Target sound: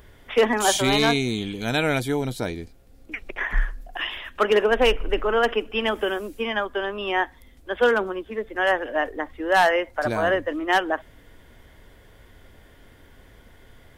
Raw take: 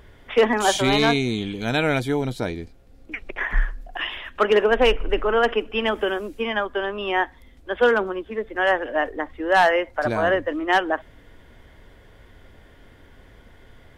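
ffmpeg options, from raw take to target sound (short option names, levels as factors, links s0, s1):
-af "highshelf=f=7300:g=10.5,volume=0.841"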